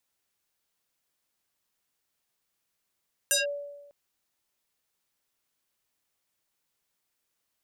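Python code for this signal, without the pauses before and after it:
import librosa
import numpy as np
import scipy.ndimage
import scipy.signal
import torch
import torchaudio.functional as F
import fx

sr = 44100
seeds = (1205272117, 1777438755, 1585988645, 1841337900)

y = fx.fm2(sr, length_s=0.6, level_db=-19.5, carrier_hz=574.0, ratio=3.82, index=5.3, index_s=0.15, decay_s=1.12, shape='linear')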